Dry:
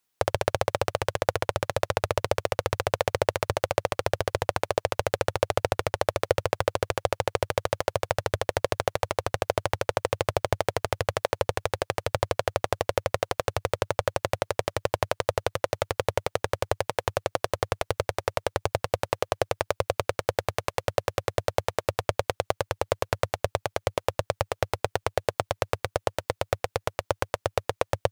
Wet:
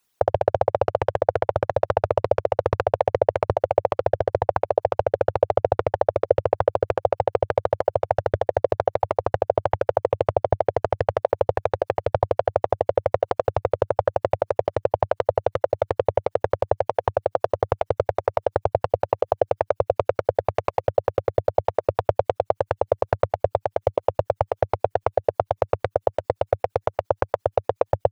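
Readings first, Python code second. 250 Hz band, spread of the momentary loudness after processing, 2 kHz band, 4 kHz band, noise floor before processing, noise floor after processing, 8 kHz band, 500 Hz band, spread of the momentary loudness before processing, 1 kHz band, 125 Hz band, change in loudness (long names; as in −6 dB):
+2.5 dB, 3 LU, −4.5 dB, below −10 dB, −78 dBFS, −73 dBFS, below −15 dB, +6.5 dB, 3 LU, +5.0 dB, +2.5 dB, +5.0 dB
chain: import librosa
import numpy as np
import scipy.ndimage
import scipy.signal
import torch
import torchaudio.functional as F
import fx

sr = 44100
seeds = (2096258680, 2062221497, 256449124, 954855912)

y = fx.envelope_sharpen(x, sr, power=2.0)
y = y * 10.0 ** (5.5 / 20.0)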